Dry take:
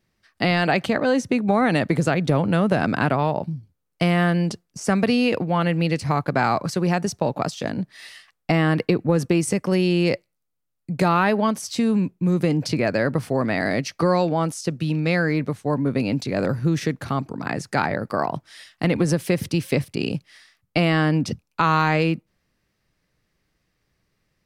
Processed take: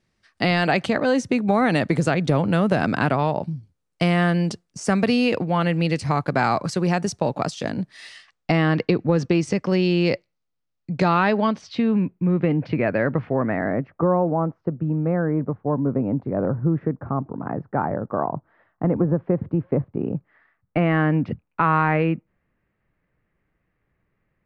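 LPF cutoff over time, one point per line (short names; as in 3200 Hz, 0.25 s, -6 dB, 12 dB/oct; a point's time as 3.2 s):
LPF 24 dB/oct
7.96 s 9700 Hz
8.69 s 5900 Hz
11.28 s 5900 Hz
12.09 s 2600 Hz
13.16 s 2600 Hz
13.98 s 1200 Hz
20 s 1200 Hz
20.99 s 2300 Hz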